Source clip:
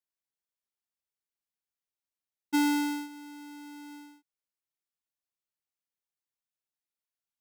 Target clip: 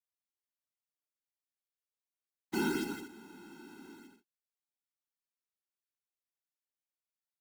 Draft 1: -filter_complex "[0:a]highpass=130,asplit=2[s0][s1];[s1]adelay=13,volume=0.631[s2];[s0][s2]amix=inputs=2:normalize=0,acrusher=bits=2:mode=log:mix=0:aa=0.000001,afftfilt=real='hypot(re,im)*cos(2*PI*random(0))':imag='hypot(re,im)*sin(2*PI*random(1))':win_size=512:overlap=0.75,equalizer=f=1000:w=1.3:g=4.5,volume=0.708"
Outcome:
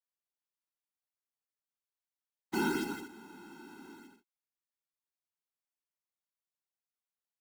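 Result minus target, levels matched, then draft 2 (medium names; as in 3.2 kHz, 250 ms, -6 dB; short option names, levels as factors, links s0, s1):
1 kHz band +3.0 dB
-filter_complex "[0:a]highpass=130,asplit=2[s0][s1];[s1]adelay=13,volume=0.631[s2];[s0][s2]amix=inputs=2:normalize=0,acrusher=bits=2:mode=log:mix=0:aa=0.000001,afftfilt=real='hypot(re,im)*cos(2*PI*random(0))':imag='hypot(re,im)*sin(2*PI*random(1))':win_size=512:overlap=0.75,volume=0.708"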